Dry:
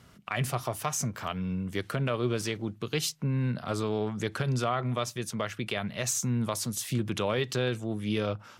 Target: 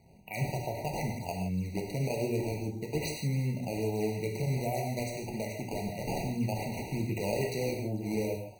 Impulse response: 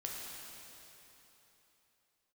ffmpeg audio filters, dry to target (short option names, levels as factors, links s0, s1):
-filter_complex "[0:a]acrusher=samples=13:mix=1:aa=0.000001:lfo=1:lforange=20.8:lforate=2.5[s0];[1:a]atrim=start_sample=2205,afade=t=out:st=0.22:d=0.01,atrim=end_sample=10143[s1];[s0][s1]afir=irnorm=-1:irlink=0,afftfilt=real='re*eq(mod(floor(b*sr/1024/960),2),0)':imag='im*eq(mod(floor(b*sr/1024/960),2),0)':win_size=1024:overlap=0.75"